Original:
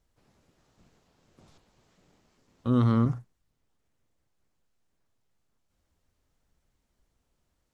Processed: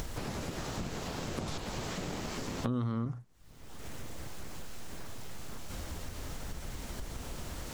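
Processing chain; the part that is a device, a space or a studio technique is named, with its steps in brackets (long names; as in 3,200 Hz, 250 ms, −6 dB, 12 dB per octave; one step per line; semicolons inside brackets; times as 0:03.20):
upward and downward compression (upward compression, threshold −26 dBFS; downward compressor 5 to 1, threshold −41 dBFS, peak gain reduction 19.5 dB)
level +8.5 dB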